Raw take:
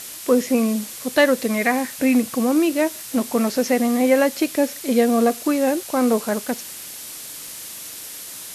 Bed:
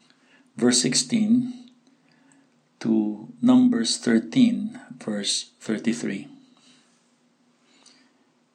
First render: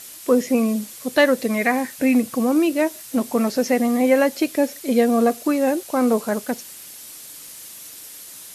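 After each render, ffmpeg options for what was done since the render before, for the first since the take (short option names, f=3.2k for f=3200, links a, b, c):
-af "afftdn=nr=6:nf=-36"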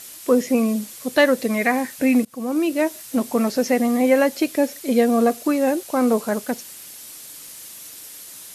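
-filter_complex "[0:a]asplit=2[a][b];[a]atrim=end=2.25,asetpts=PTS-STARTPTS,afade=t=out:st=2.246:d=0.004:c=hsin:silence=0.0668344[c];[b]atrim=start=2.25,asetpts=PTS-STARTPTS,afade=t=in:d=0.72:c=qsin:silence=0.0668344[d];[c][d]concat=n=2:v=0:a=1"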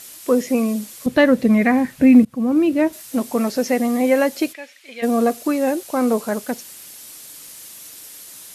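-filter_complex "[0:a]asettb=1/sr,asplit=3[a][b][c];[a]atrim=end=1.064[d];[b]atrim=start=1.06:end=2.93,asetpts=PTS-STARTPTS,afade=t=in:d=0.004:c=qsin,afade=t=out:st=1.866:d=0.004:c=qsin,bass=f=250:g=15,treble=f=4k:g=-9[e];[c]atrim=start=2.926[f];[d][e]acrossfade=d=0.004:c1=hsin:c2=qsin[g];[g][f]acrossfade=d=0.004:c1=qsin:c2=hsin,asplit=3[h][i][j];[h]afade=t=out:st=4.52:d=0.02[k];[i]bandpass=f=2.4k:t=q:w=1.8,afade=t=in:st=4.52:d=0.02,afade=t=out:st=5.02:d=0.02[l];[j]afade=t=in:st=5.02:d=0.02[m];[k][l][m]amix=inputs=3:normalize=0"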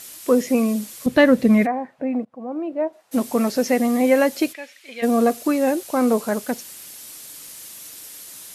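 -filter_complex "[0:a]asplit=3[a][b][c];[a]afade=t=out:st=1.65:d=0.02[d];[b]bandpass=f=700:t=q:w=2.1,afade=t=in:st=1.65:d=0.02,afade=t=out:st=3.11:d=0.02[e];[c]afade=t=in:st=3.11:d=0.02[f];[d][e][f]amix=inputs=3:normalize=0"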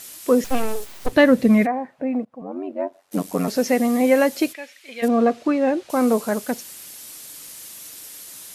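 -filter_complex "[0:a]asettb=1/sr,asplit=3[a][b][c];[a]atrim=end=0.444[d];[b]atrim=start=0.44:end=1.13,asetpts=PTS-STARTPTS,afade=t=in:d=0.004:c=qsin,afade=t=out:st=0.686:d=0.004:c=qsin,aeval=exprs='abs(val(0))':c=same[e];[c]atrim=start=1.126[f];[d][e]acrossfade=d=0.004:c1=hsin:c2=qsin[g];[g][f]acrossfade=d=0.004:c1=qsin:c2=hsin,asettb=1/sr,asplit=3[h][i][j];[h]atrim=end=2.414[k];[i]atrim=start=2.41:end=3.48,asetpts=PTS-STARTPTS,afade=t=in:d=0.004:c=qsin,afade=t=out:st=1.066:d=0.004:c=qsin,aeval=exprs='val(0)*sin(2*PI*46*n/s)':c=same[l];[j]atrim=start=3.476[m];[k][l]acrossfade=d=0.004:c1=hsin:c2=qsin[n];[n][m]acrossfade=d=0.004:c1=qsin:c2=hsin,asettb=1/sr,asplit=3[o][p][q];[o]atrim=end=5.084[r];[p]atrim=start=5.08:end=5.9,asetpts=PTS-STARTPTS,afade=t=in:d=0.004:c=qsin,afade=t=out:st=0.816:d=0.004:c=qsin,lowpass=3.5k[s];[q]atrim=start=5.896[t];[r][s]acrossfade=d=0.004:c1=hsin:c2=qsin[u];[u][t]acrossfade=d=0.004:c1=qsin:c2=hsin"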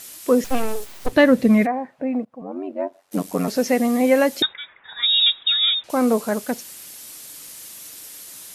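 -filter_complex "[0:a]asettb=1/sr,asplit=3[a][b][c];[a]atrim=end=4.424[d];[b]atrim=start=4.42:end=5.84,asetpts=PTS-STARTPTS,afade=t=in:d=0.004:c=qsin,afade=t=out:st=1.416:d=0.004:c=qsin,lowpass=f=3.4k:t=q:w=0.5098,lowpass=f=3.4k:t=q:w=0.6013,lowpass=f=3.4k:t=q:w=0.9,lowpass=f=3.4k:t=q:w=2.563,afreqshift=-4000[e];[c]atrim=start=5.836[f];[d][e]acrossfade=d=0.004:c1=hsin:c2=qsin[g];[g][f]acrossfade=d=0.004:c1=qsin:c2=hsin"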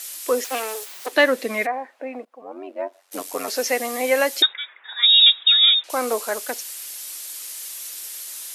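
-af "highpass=f=330:w=0.5412,highpass=f=330:w=1.3066,tiltshelf=f=970:g=-5"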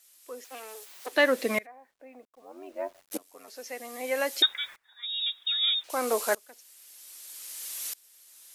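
-af "acrusher=bits=8:mix=0:aa=0.000001,aeval=exprs='val(0)*pow(10,-26*if(lt(mod(-0.63*n/s,1),2*abs(-0.63)/1000),1-mod(-0.63*n/s,1)/(2*abs(-0.63)/1000),(mod(-0.63*n/s,1)-2*abs(-0.63)/1000)/(1-2*abs(-0.63)/1000))/20)':c=same"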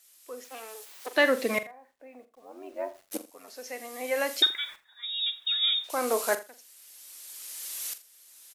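-filter_complex "[0:a]asplit=2[a][b];[b]adelay=44,volume=-12.5dB[c];[a][c]amix=inputs=2:normalize=0,aecho=1:1:83:0.119"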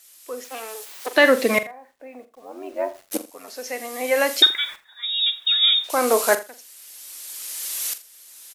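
-af "volume=8.5dB,alimiter=limit=-3dB:level=0:latency=1"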